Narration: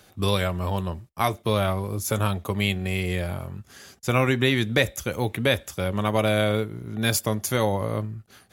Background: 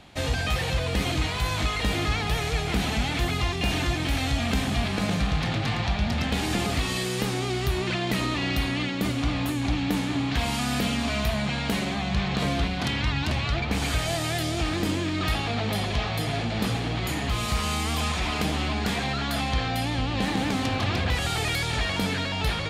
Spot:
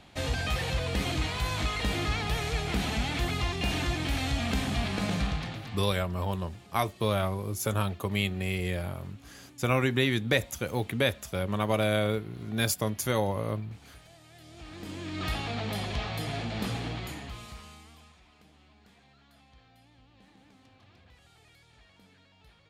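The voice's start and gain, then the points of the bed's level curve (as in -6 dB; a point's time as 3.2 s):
5.55 s, -4.5 dB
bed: 5.26 s -4 dB
6.14 s -27.5 dB
14.29 s -27.5 dB
15.25 s -6 dB
16.88 s -6 dB
18.25 s -33 dB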